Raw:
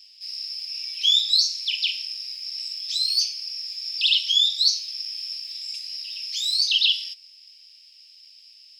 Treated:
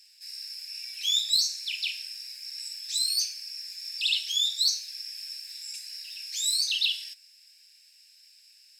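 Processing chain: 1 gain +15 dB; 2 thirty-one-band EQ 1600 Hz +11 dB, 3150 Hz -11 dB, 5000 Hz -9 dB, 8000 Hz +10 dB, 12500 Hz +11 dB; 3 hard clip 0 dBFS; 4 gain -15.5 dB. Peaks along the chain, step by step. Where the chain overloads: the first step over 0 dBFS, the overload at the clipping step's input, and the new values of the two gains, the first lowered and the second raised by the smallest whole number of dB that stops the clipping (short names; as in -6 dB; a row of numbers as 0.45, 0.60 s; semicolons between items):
+9.5, +4.5, 0.0, -15.5 dBFS; step 1, 4.5 dB; step 1 +10 dB, step 4 -10.5 dB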